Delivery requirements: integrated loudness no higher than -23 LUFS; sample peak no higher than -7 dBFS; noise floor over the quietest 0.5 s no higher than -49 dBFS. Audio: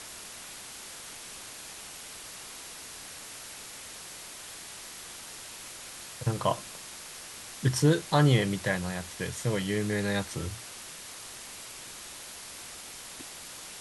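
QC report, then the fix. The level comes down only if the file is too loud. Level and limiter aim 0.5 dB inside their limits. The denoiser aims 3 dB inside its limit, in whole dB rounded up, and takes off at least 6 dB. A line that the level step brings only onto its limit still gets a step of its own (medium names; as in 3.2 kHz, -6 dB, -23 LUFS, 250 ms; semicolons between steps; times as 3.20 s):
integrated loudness -33.5 LUFS: pass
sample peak -9.5 dBFS: pass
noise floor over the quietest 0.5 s -44 dBFS: fail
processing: noise reduction 8 dB, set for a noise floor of -44 dBFS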